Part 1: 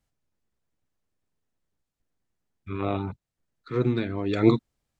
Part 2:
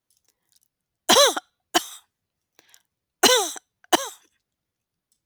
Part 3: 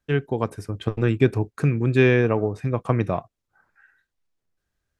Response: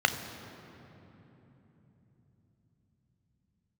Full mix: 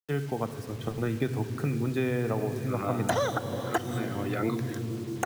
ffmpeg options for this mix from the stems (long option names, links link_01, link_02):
-filter_complex "[0:a]volume=-9dB,asplit=2[link_01][link_02];[link_02]volume=-10.5dB[link_03];[1:a]lowshelf=frequency=160:gain=10.5,adelay=2000,volume=3dB,asplit=2[link_04][link_05];[link_05]volume=-20.5dB[link_06];[2:a]volume=-6.5dB,asplit=3[link_07][link_08][link_09];[link_08]volume=-16.5dB[link_10];[link_09]volume=-17.5dB[link_11];[link_01][link_04]amix=inputs=2:normalize=0,equalizer=frequency=1500:width=1.1:gain=13,acompressor=threshold=-16dB:ratio=6,volume=0dB[link_12];[3:a]atrim=start_sample=2205[link_13];[link_03][link_06][link_10]amix=inputs=3:normalize=0[link_14];[link_14][link_13]afir=irnorm=-1:irlink=0[link_15];[link_11]aecho=0:1:71|142|213|284|355|426|497:1|0.48|0.23|0.111|0.0531|0.0255|0.0122[link_16];[link_07][link_12][link_15][link_16]amix=inputs=4:normalize=0,acrossover=split=150|1000[link_17][link_18][link_19];[link_17]acompressor=threshold=-33dB:ratio=4[link_20];[link_18]acompressor=threshold=-27dB:ratio=4[link_21];[link_19]acompressor=threshold=-38dB:ratio=4[link_22];[link_20][link_21][link_22]amix=inputs=3:normalize=0,acrusher=bits=7:mix=0:aa=0.000001"